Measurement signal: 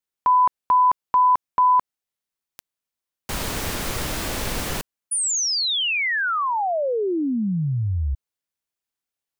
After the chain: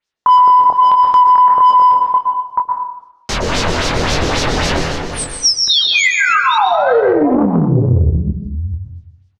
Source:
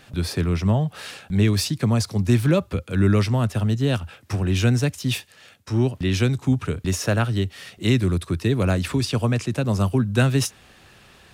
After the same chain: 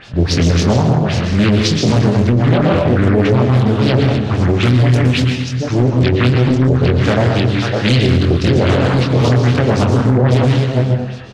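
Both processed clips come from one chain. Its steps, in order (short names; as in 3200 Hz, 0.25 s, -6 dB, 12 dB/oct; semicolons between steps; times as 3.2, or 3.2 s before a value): reverse delay 0.437 s, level -8.5 dB; in parallel at -6 dB: soft clip -21 dBFS; on the sum: LFO low-pass sine 3.7 Hz 430–5900 Hz; doubler 24 ms -4 dB; plate-style reverb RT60 0.92 s, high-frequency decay 0.8×, pre-delay 0.105 s, DRR 2.5 dB; limiter -8.5 dBFS; Doppler distortion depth 0.61 ms; gain +4.5 dB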